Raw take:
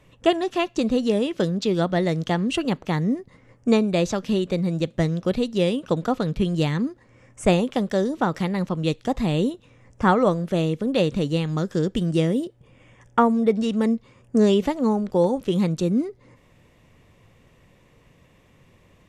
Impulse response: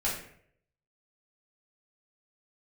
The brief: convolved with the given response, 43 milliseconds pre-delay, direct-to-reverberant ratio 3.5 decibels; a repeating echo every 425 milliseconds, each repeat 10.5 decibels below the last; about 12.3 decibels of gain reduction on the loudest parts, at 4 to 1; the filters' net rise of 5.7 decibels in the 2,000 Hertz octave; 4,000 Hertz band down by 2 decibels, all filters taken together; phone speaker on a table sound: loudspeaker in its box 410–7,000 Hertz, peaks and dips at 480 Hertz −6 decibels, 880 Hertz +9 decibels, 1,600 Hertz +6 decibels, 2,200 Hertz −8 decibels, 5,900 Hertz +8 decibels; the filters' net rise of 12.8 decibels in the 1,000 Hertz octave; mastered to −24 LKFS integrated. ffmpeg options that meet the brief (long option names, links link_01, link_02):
-filter_complex "[0:a]equalizer=frequency=1000:width_type=o:gain=8.5,equalizer=frequency=2000:width_type=o:gain=3,equalizer=frequency=4000:width_type=o:gain=-4.5,acompressor=threshold=-22dB:ratio=4,aecho=1:1:425|850|1275:0.299|0.0896|0.0269,asplit=2[link_01][link_02];[1:a]atrim=start_sample=2205,adelay=43[link_03];[link_02][link_03]afir=irnorm=-1:irlink=0,volume=-11dB[link_04];[link_01][link_04]amix=inputs=2:normalize=0,highpass=frequency=410:width=0.5412,highpass=frequency=410:width=1.3066,equalizer=frequency=480:width_type=q:width=4:gain=-6,equalizer=frequency=880:width_type=q:width=4:gain=9,equalizer=frequency=1600:width_type=q:width=4:gain=6,equalizer=frequency=2200:width_type=q:width=4:gain=-8,equalizer=frequency=5900:width_type=q:width=4:gain=8,lowpass=frequency=7000:width=0.5412,lowpass=frequency=7000:width=1.3066,volume=3dB"